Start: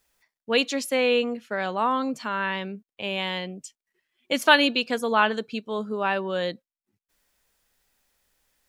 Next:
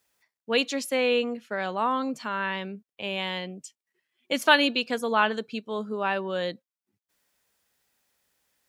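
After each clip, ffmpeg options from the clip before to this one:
ffmpeg -i in.wav -af "highpass=85,volume=-2dB" out.wav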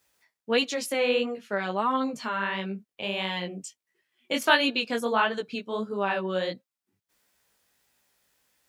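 ffmpeg -i in.wav -filter_complex "[0:a]asplit=2[link_01][link_02];[link_02]acompressor=threshold=-32dB:ratio=6,volume=0dB[link_03];[link_01][link_03]amix=inputs=2:normalize=0,flanger=delay=15:depth=7:speed=1.5" out.wav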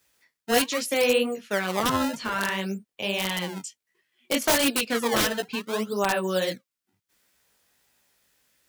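ffmpeg -i in.wav -filter_complex "[0:a]acrossover=split=830[link_01][link_02];[link_01]acrusher=samples=22:mix=1:aa=0.000001:lfo=1:lforange=35.2:lforate=0.61[link_03];[link_02]aeval=exprs='(mod(10.6*val(0)+1,2)-1)/10.6':channel_layout=same[link_04];[link_03][link_04]amix=inputs=2:normalize=0,volume=3dB" out.wav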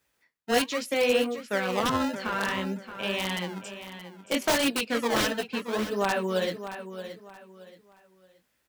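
ffmpeg -i in.wav -filter_complex "[0:a]aecho=1:1:625|1250|1875:0.282|0.0846|0.0254,asplit=2[link_01][link_02];[link_02]adynamicsmooth=sensitivity=4:basefreq=3600,volume=0.5dB[link_03];[link_01][link_03]amix=inputs=2:normalize=0,volume=-8dB" out.wav

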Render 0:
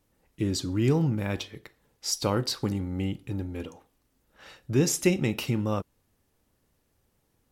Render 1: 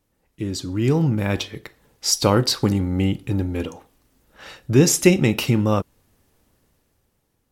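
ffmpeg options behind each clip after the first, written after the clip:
ffmpeg -i in.wav -af "dynaudnorm=framelen=200:gausssize=11:maxgain=12dB" out.wav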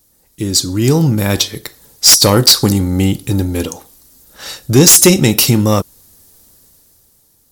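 ffmpeg -i in.wav -af "aexciter=amount=3.8:drive=6.5:freq=3800,aeval=exprs='1.78*sin(PI/2*3.16*val(0)/1.78)':channel_layout=same,volume=-6.5dB" out.wav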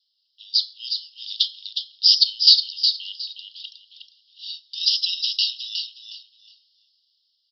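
ffmpeg -i in.wav -filter_complex "[0:a]asuperpass=centerf=3900:order=20:qfactor=1.6,asplit=2[link_01][link_02];[link_02]aecho=0:1:363|726|1089:0.473|0.109|0.025[link_03];[link_01][link_03]amix=inputs=2:normalize=0,volume=-3dB" out.wav

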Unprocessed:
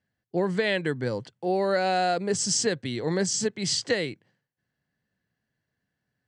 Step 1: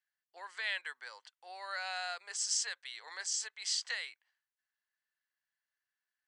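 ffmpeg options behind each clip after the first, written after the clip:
ffmpeg -i in.wav -af "highpass=frequency=1000:width=0.5412,highpass=frequency=1000:width=1.3066,volume=-7dB" out.wav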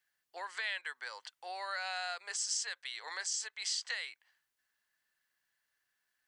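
ffmpeg -i in.wav -af "acompressor=threshold=-50dB:ratio=2,volume=8.5dB" out.wav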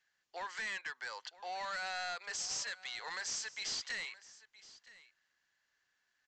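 ffmpeg -i in.wav -af "aresample=16000,asoftclip=type=tanh:threshold=-39dB,aresample=44100,aecho=1:1:970:0.112,volume=3.5dB" out.wav

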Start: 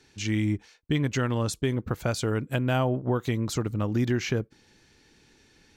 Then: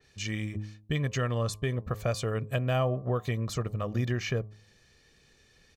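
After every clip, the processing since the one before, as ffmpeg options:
ffmpeg -i in.wav -af "aecho=1:1:1.7:0.58,bandreject=frequency=105.6:width_type=h:width=4,bandreject=frequency=211.2:width_type=h:width=4,bandreject=frequency=316.8:width_type=h:width=4,bandreject=frequency=422.4:width_type=h:width=4,bandreject=frequency=528:width_type=h:width=4,bandreject=frequency=633.6:width_type=h:width=4,bandreject=frequency=739.2:width_type=h:width=4,bandreject=frequency=844.8:width_type=h:width=4,bandreject=frequency=950.4:width_type=h:width=4,bandreject=frequency=1056:width_type=h:width=4,bandreject=frequency=1161.6:width_type=h:width=4,adynamicequalizer=threshold=0.00447:dfrequency=3800:dqfactor=0.7:tfrequency=3800:tqfactor=0.7:attack=5:release=100:ratio=0.375:range=2:mode=cutabove:tftype=highshelf,volume=-3.5dB" out.wav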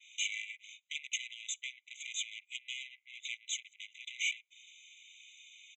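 ffmpeg -i in.wav -af "acompressor=threshold=-28dB:ratio=12,aresample=16000,asoftclip=type=tanh:threshold=-39.5dB,aresample=44100,afftfilt=real='re*eq(mod(floor(b*sr/1024/2000),2),1)':imag='im*eq(mod(floor(b*sr/1024/2000),2),1)':win_size=1024:overlap=0.75,volume=12dB" out.wav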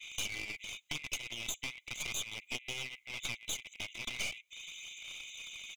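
ffmpeg -i in.wav -af "aphaser=in_gain=1:out_gain=1:delay=3.2:decay=0.3:speed=0.39:type=sinusoidal,acompressor=threshold=-42dB:ratio=10,aeval=exprs='clip(val(0),-1,0.00211)':channel_layout=same,volume=10dB" out.wav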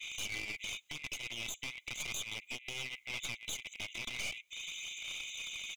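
ffmpeg -i in.wav -af "alimiter=level_in=6.5dB:limit=-24dB:level=0:latency=1:release=141,volume=-6.5dB,volume=4dB" out.wav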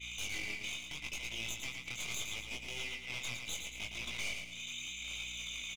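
ffmpeg -i in.wav -af "aeval=exprs='val(0)+0.00178*(sin(2*PI*60*n/s)+sin(2*PI*2*60*n/s)/2+sin(2*PI*3*60*n/s)/3+sin(2*PI*4*60*n/s)/4+sin(2*PI*5*60*n/s)/5)':channel_layout=same,flanger=delay=17.5:depth=7.2:speed=0.75,aecho=1:1:112|224|336|448|560:0.501|0.205|0.0842|0.0345|0.0142,volume=2dB" out.wav

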